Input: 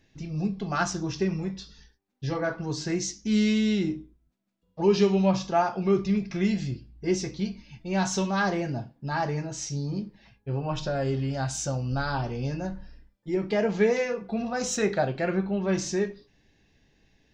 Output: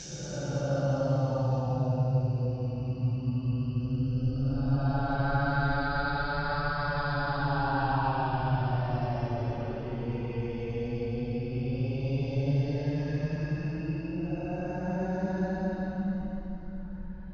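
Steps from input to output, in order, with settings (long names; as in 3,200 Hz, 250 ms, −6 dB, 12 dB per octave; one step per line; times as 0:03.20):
high-shelf EQ 4,000 Hz +6.5 dB
extreme stretch with random phases 15×, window 0.10 s, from 0:11.63
high-frequency loss of the air 250 metres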